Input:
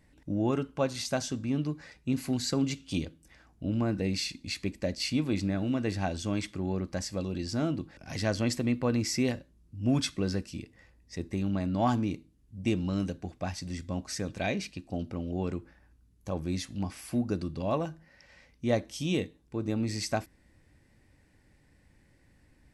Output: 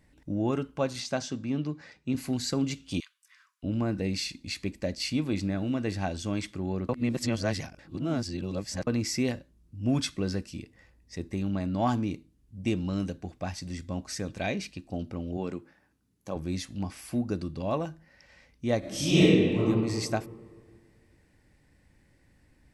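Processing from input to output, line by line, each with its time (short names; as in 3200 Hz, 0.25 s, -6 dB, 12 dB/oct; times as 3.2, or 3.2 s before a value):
1–2.15 BPF 110–6500 Hz
3–3.63 brick-wall FIR high-pass 960 Hz
6.89–8.87 reverse
15.37–16.36 HPF 160 Hz
18.79–19.59 reverb throw, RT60 1.9 s, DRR -11 dB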